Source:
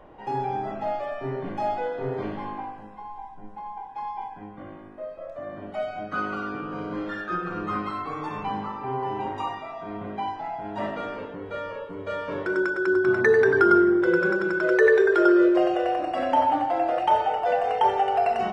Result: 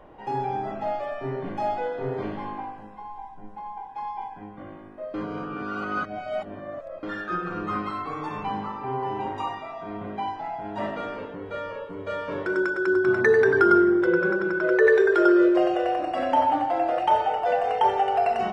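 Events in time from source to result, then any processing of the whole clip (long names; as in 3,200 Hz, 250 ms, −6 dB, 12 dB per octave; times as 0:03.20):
0:05.14–0:07.03: reverse
0:14.06–0:14.87: low-pass filter 2,800 Hz 6 dB per octave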